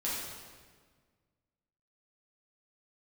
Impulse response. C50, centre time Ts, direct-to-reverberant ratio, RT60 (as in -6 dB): -1.0 dB, 94 ms, -8.0 dB, 1.6 s